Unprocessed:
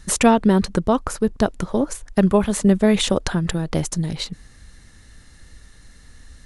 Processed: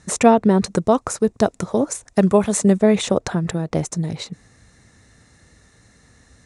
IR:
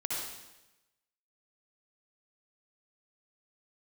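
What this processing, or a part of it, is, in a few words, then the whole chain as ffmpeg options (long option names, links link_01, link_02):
car door speaker: -filter_complex "[0:a]asettb=1/sr,asplit=3[link_01][link_02][link_03];[link_01]atrim=end=0.624[link_04];[link_02]atrim=start=0.62:end=2.79,asetpts=PTS-STARTPTS,afade=type=in:duration=0.004:curve=qsin,afade=type=out:start_time=2.166:duration=0.004:curve=qsin,highshelf=frequency=3800:gain=9.5[link_05];[link_03]atrim=start=2.786[link_06];[link_04][link_05]acrossfade=duration=0.004:curve1=hsin:curve2=qsin[link_07];[link_07][link_06]acrossfade=duration=0.004:curve1=qsin:curve2=hsin,highpass=96,equalizer=frequency=110:width_type=q:width=4:gain=4,equalizer=frequency=450:width_type=q:width=4:gain=3,equalizer=frequency=690:width_type=q:width=4:gain=4,equalizer=frequency=1600:width_type=q:width=4:gain=-3,equalizer=frequency=3100:width_type=q:width=4:gain=-8,equalizer=frequency=4600:width_type=q:width=4:gain=-6,lowpass=frequency=8800:width=0.5412,lowpass=frequency=8800:width=1.3066"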